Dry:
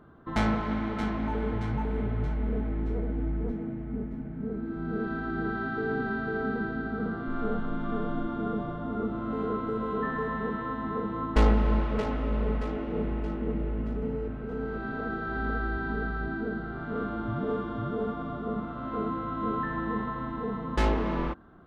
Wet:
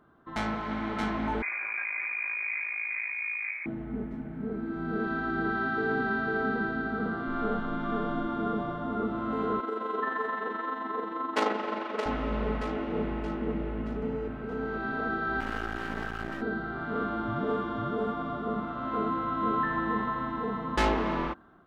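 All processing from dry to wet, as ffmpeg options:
-filter_complex "[0:a]asettb=1/sr,asplit=3[a][b][c];[a]atrim=end=1.424[d];[b]atrim=start=1.42:end=3.66,asetpts=PTS-STARTPTS,afade=t=in:d=0.004:c=qsin,afade=t=out:st=2.236:d=0.004:c=qsin,lowshelf=f=410:g=-6,aeval=exprs='(tanh(39.8*val(0)+0.75)-tanh(0.75))/39.8':c=same,lowpass=f=2.1k:t=q:w=0.5098,lowpass=f=2.1k:t=q:w=0.6013,lowpass=f=2.1k:t=q:w=0.9,lowpass=f=2.1k:t=q:w=2.563,afreqshift=-2500[e];[c]atrim=start=3.656[f];[d][e]acrossfade=d=0.004:c1=hsin:c2=qsin[g];[g][f]acrossfade=d=0.004:c1=qsin:c2=hsin,asettb=1/sr,asplit=3[h][i][j];[h]atrim=end=9.604[k];[i]atrim=start=9.6:end=12.06,asetpts=PTS-STARTPTS,afade=t=in:d=0.004:c=qsin,afade=t=out:st=2.456:d=0.004:c=qsin,highpass=f=280:w=0.5412,highpass=f=280:w=1.3066,tremolo=f=23:d=0.462[l];[j]atrim=start=12.056[m];[k][l]acrossfade=d=0.004:c1=hsin:c2=qsin[n];[n][m]acrossfade=d=0.004:c1=qsin:c2=hsin,asettb=1/sr,asplit=3[o][p][q];[o]atrim=end=15.404[r];[p]atrim=start=15.4:end=16.42,asetpts=PTS-STARTPTS,afade=t=in:d=0.004:c=qsin,afade=t=out:st=1.016:d=0.004:c=qsin,highshelf=f=2.4k:g=-7,aeval=exprs='max(val(0),0)':c=same[s];[q]atrim=start=16.416[t];[r][s]acrossfade=d=0.004:c1=hsin:c2=qsin[u];[u][t]acrossfade=d=0.004:c1=qsin:c2=hsin,equalizer=f=490:t=o:w=0.45:g=-3.5,dynaudnorm=f=300:g=5:m=8dB,lowshelf=f=210:g=-10.5,volume=-3.5dB"

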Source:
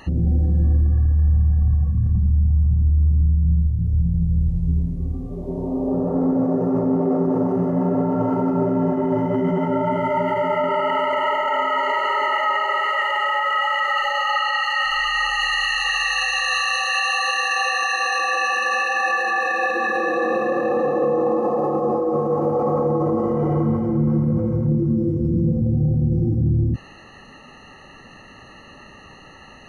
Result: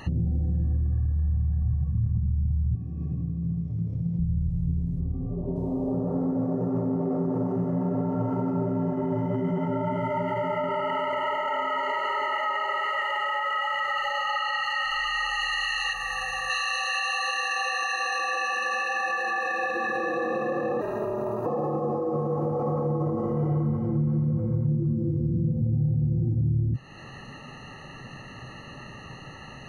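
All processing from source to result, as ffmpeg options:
-filter_complex "[0:a]asettb=1/sr,asplit=3[a][b][c];[a]atrim=end=2.754[d];[b]atrim=start=2.75:end=4.19,asetpts=PTS-STARTPTS,afade=t=in:d=0.004:c=qsin,afade=t=out:st=1.436:d=0.004:c=qsin,acrossover=split=230 5800:gain=0.224 1 0.0794[e][f][g];[e][f][g]amix=inputs=3:normalize=0,acontrast=50,highpass=f=100:w=0.5412,highpass=f=100:w=1.3066[h];[c]atrim=start=4.186[i];[d][h]acrossfade=d=0.004:c1=hsin:c2=qsin[j];[j][i]acrossfade=d=0.004:c1=qsin:c2=hsin,asettb=1/sr,asplit=3[k][l][m];[k]atrim=end=5.004[n];[l]atrim=start=5:end=5.56,asetpts=PTS-STARTPTS,afade=t=in:d=0.004:c=qsin,afade=t=out:st=0.556:d=0.004:c=qsin,lowpass=f=2.7k:w=0.5412,lowpass=f=2.7k:w=1.3066,equalizer=f=2.1k:w=2.3:g=-9.5[o];[m]atrim=start=5.556[p];[n][o]acrossfade=d=0.004:c1=hsin:c2=qsin[q];[q][p]acrossfade=d=0.004:c1=qsin:c2=hsin,asettb=1/sr,asplit=3[r][s][t];[r]atrim=end=15.934[u];[s]atrim=start=15.93:end=16.5,asetpts=PTS-STARTPTS,afade=t=in:d=0.004:c=qsin,afade=t=out:st=0.566:d=0.004:c=qsin,equalizer=f=4k:w=0.55:g=-11.5,aeval=exprs='val(0)+0.00224*(sin(2*PI*50*n/s)+sin(2*PI*2*50*n/s)/2+sin(2*PI*3*50*n/s)/3+sin(2*PI*4*50*n/s)/4+sin(2*PI*5*50*n/s)/5)':c=same[v];[t]atrim=start=16.496[w];[u][v]acrossfade=d=0.004:c1=hsin:c2=qsin[x];[x][w]acrossfade=d=0.004:c1=qsin:c2=hsin,asettb=1/sr,asplit=3[y][z][aa];[y]atrim=end=20.814[ab];[z]atrim=start=20.81:end=21.46,asetpts=PTS-STARTPTS,afade=t=in:d=0.004:c=qsin,afade=t=out:st=0.646:d=0.004:c=qsin,aemphasis=mode=production:type=bsi,aeval=exprs='val(0)*sin(2*PI*110*n/s)':c=same[ac];[aa]atrim=start=21.456[ad];[ab][ac]acrossfade=d=0.004:c1=hsin:c2=qsin[ae];[ae][ad]acrossfade=d=0.004:c1=qsin:c2=hsin,equalizer=f=130:w=2.2:g=11,acompressor=threshold=-28dB:ratio=2.5"

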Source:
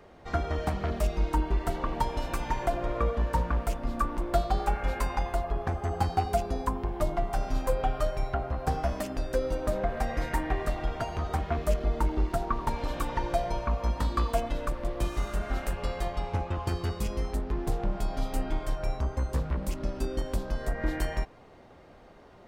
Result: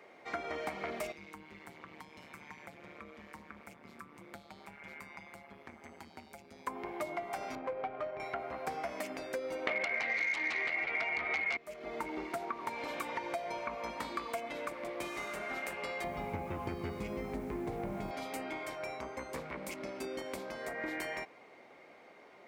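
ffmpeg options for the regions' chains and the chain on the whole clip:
-filter_complex "[0:a]asettb=1/sr,asplit=3[a][b][c];[a]atrim=end=1.124[d];[b]atrim=start=1.12:end=6.67,asetpts=PTS-STARTPTS,afade=t=in:d=0.004:c=qsin,afade=t=out:st=5.546:d=0.004:c=qsin,acrossover=split=290|2000[e][f][g];[e]acompressor=threshold=-31dB:ratio=4[h];[f]acompressor=threshold=-33dB:ratio=4[i];[g]acompressor=threshold=-54dB:ratio=4[j];[h][i][j]amix=inputs=3:normalize=0,tremolo=f=150:d=1,equalizer=f=670:w=0.53:g=-13[k];[c]atrim=start=6.666[l];[d][k]acrossfade=d=0.004:c1=hsin:c2=qsin[m];[m][l]acrossfade=d=0.004:c1=qsin:c2=hsin,asettb=1/sr,asplit=3[n][o][p];[n]atrim=end=7.554[q];[o]atrim=start=7.55:end=8.2,asetpts=PTS-STARTPTS,afade=t=in:d=0.004:c=qsin,afade=t=out:st=0.646:d=0.004:c=qsin,lowpass=9.1k,adynamicsmooth=sensitivity=1:basefreq=1.2k[r];[p]atrim=start=8.196[s];[q][r]acrossfade=d=0.004:c1=hsin:c2=qsin[t];[t][s]acrossfade=d=0.004:c1=qsin:c2=hsin,asettb=1/sr,asplit=3[u][v][w];[u]atrim=end=9.674[x];[v]atrim=start=9.67:end=11.57,asetpts=PTS-STARTPTS,afade=t=in:d=0.004:c=qsin,afade=t=out:st=1.896:d=0.004:c=qsin,lowpass=f=2.2k:t=q:w=11,aeval=exprs='0.282*sin(PI/2*3.98*val(0)/0.282)':c=same[y];[w]atrim=start=11.566[z];[x][y]acrossfade=d=0.004:c1=hsin:c2=qsin[aa];[aa][z]acrossfade=d=0.004:c1=qsin:c2=hsin,asettb=1/sr,asplit=3[ab][ac][ad];[ab]atrim=end=16.044[ae];[ac]atrim=start=16.04:end=18.11,asetpts=PTS-STARTPTS,afade=t=in:d=0.004:c=qsin,afade=t=out:st=2.066:d=0.004:c=qsin,aemphasis=mode=reproduction:type=riaa,aeval=exprs='val(0)+0.0447*(sin(2*PI*50*n/s)+sin(2*PI*2*50*n/s)/2+sin(2*PI*3*50*n/s)/3+sin(2*PI*4*50*n/s)/4+sin(2*PI*5*50*n/s)/5)':c=same,acrusher=bits=8:mix=0:aa=0.5[af];[ad]atrim=start=18.106[ag];[ae][af]acrossfade=d=0.004:c1=hsin:c2=qsin[ah];[ah][ag]acrossfade=d=0.004:c1=qsin:c2=hsin,highpass=300,equalizer=f=2.2k:t=o:w=0.26:g=14,acompressor=threshold=-31dB:ratio=6,volume=-3dB"

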